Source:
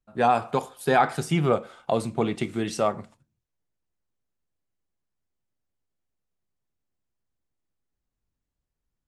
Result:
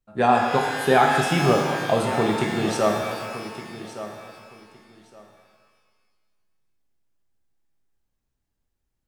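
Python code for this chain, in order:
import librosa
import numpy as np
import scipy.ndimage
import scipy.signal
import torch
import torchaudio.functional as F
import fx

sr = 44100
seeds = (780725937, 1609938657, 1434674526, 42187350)

p1 = x + fx.echo_feedback(x, sr, ms=1165, feedback_pct=20, wet_db=-13.5, dry=0)
p2 = fx.rev_shimmer(p1, sr, seeds[0], rt60_s=1.6, semitones=12, shimmer_db=-8, drr_db=1.5)
y = F.gain(torch.from_numpy(p2), 1.5).numpy()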